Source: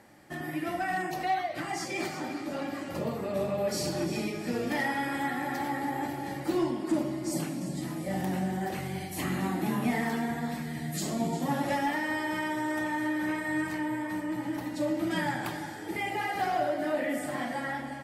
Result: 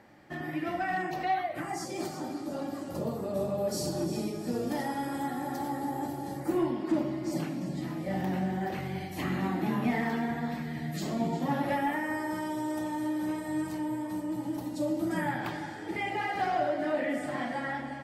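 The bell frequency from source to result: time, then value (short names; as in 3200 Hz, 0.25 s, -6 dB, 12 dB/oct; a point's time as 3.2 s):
bell -13 dB 1.2 oct
1.25 s 10000 Hz
1.91 s 2200 Hz
6.34 s 2200 Hz
6.79 s 9500 Hz
11.52 s 9500 Hz
12.54 s 1900 Hz
14.99 s 1900 Hz
15.54 s 13000 Hz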